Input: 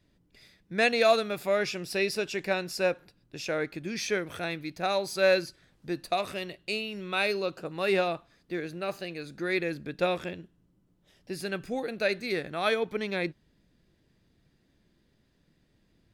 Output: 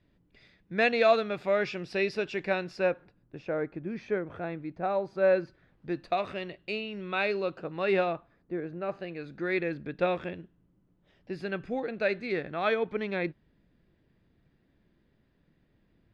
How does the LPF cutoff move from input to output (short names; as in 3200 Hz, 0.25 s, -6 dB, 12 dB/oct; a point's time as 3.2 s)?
2.59 s 3100 Hz
3.52 s 1200 Hz
5.22 s 1200 Hz
5.95 s 2700 Hz
8 s 2700 Hz
8.54 s 1100 Hz
9.32 s 2600 Hz